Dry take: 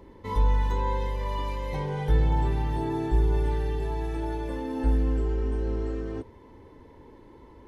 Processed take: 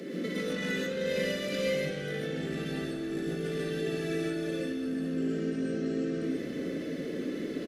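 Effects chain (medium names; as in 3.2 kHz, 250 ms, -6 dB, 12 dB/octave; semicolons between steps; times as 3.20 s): single-diode clipper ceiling -18.5 dBFS; steep high-pass 160 Hz 72 dB/octave; tone controls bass +11 dB, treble +11 dB; in parallel at -4 dB: overload inside the chain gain 28.5 dB; on the sum: peak limiter -22 dBFS, peak gain reduction 5.5 dB; compressor with a negative ratio -35 dBFS, ratio -1; overdrive pedal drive 10 dB, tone 2.5 kHz, clips at -22.5 dBFS; Butterworth band-stop 940 Hz, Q 1.3; frequency-shifting echo 309 ms, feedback 60%, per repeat -40 Hz, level -17 dB; gated-style reverb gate 170 ms rising, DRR -3.5 dB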